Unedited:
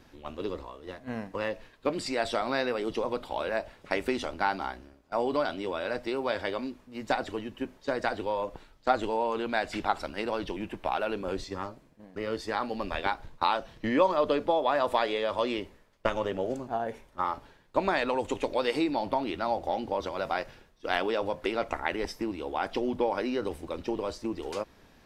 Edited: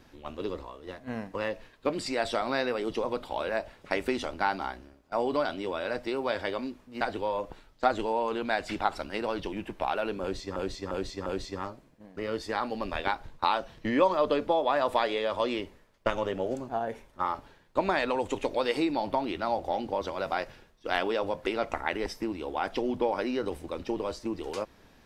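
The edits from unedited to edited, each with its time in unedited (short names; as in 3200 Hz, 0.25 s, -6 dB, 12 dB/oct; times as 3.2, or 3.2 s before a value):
7.01–8.05 cut
11.25–11.6 loop, 4 plays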